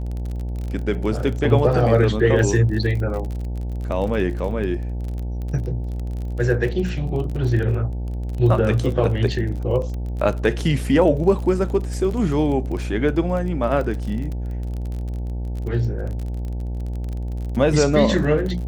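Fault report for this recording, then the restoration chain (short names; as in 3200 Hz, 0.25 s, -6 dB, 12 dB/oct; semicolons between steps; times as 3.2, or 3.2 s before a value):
buzz 60 Hz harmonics 15 -26 dBFS
crackle 31/s -28 dBFS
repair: de-click; de-hum 60 Hz, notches 15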